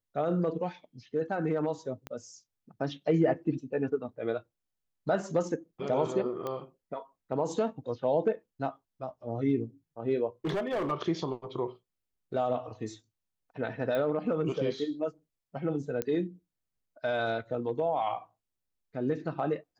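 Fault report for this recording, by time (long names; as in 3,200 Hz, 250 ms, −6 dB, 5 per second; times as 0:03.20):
0:02.07: click −24 dBFS
0:06.47: click −22 dBFS
0:10.45–0:10.92: clipping −27 dBFS
0:13.95: click −21 dBFS
0:16.02: click −15 dBFS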